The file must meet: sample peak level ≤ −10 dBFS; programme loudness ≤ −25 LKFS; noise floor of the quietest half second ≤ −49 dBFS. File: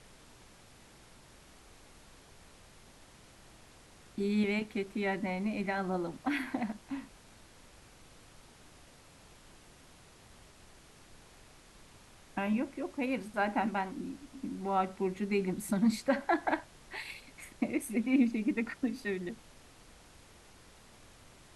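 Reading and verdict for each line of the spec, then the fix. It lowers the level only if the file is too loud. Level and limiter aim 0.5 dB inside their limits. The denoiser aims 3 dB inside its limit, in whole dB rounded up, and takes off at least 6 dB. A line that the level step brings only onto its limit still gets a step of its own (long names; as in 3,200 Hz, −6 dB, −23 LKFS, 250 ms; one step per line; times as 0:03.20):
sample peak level −17.0 dBFS: in spec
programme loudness −34.0 LKFS: in spec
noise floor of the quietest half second −57 dBFS: in spec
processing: no processing needed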